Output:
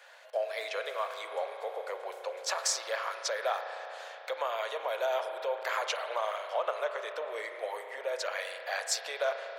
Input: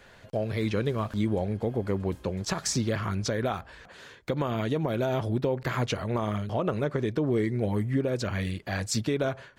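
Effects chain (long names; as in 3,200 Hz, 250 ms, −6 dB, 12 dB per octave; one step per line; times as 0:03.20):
Butterworth high-pass 530 Hz 48 dB per octave
spring reverb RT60 3.8 s, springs 34 ms, chirp 25 ms, DRR 6 dB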